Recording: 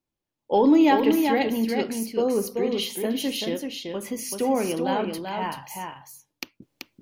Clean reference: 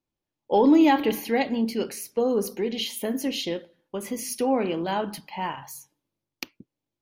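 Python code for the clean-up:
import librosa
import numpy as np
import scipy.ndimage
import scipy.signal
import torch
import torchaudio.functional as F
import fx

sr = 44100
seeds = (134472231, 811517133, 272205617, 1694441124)

y = fx.fix_echo_inverse(x, sr, delay_ms=384, level_db=-5.0)
y = fx.fix_level(y, sr, at_s=6.62, step_db=-11.5)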